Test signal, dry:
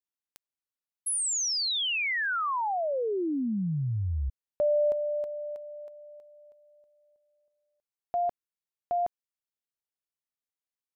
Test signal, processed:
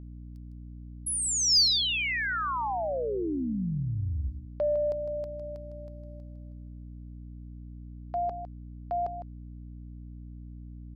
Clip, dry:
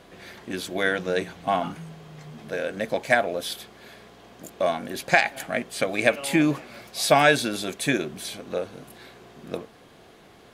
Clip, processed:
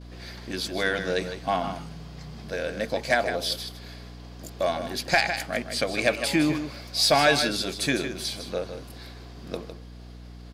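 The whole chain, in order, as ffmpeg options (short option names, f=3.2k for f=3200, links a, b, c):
-af "agate=range=-18dB:threshold=-49dB:ratio=3:release=124:detection=peak,equalizer=f=4.8k:w=2.6:g=11.5,aecho=1:1:156:0.316,aeval=exprs='val(0)+0.01*(sin(2*PI*60*n/s)+sin(2*PI*2*60*n/s)/2+sin(2*PI*3*60*n/s)/3+sin(2*PI*4*60*n/s)/4+sin(2*PI*5*60*n/s)/5)':c=same,acontrast=58,volume=-8dB"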